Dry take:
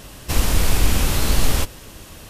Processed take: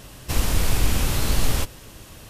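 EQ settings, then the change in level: peaking EQ 120 Hz +6 dB 0.26 oct; -3.5 dB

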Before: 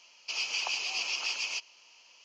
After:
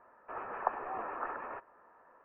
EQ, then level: rippled Chebyshev low-pass 1.8 kHz, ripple 3 dB; bass shelf 120 Hz +6 dB; +10.5 dB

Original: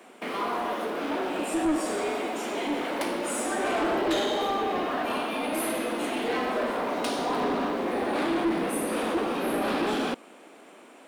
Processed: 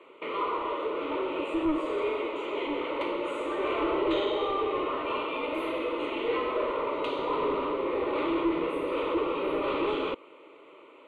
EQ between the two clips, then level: distance through air 210 m; static phaser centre 1.1 kHz, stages 8; +2.5 dB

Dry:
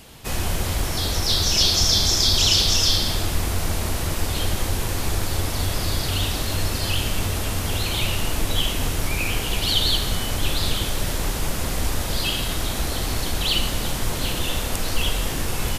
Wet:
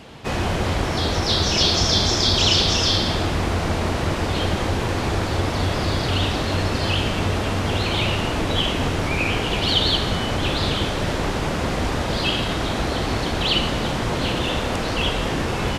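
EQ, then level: high-pass 150 Hz 6 dB/octave; tape spacing loss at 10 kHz 21 dB; +8.5 dB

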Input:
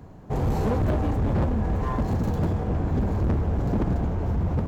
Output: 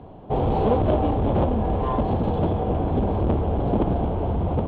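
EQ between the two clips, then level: FFT filter 160 Hz 0 dB, 380 Hz +6 dB, 760 Hz +9 dB, 1.8 kHz -5 dB, 3.3 kHz +8 dB, 5.7 kHz -22 dB; 0.0 dB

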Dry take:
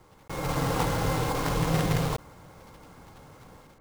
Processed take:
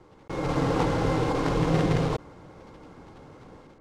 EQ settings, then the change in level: distance through air 82 m; peaking EQ 340 Hz +7.5 dB 1.2 oct; 0.0 dB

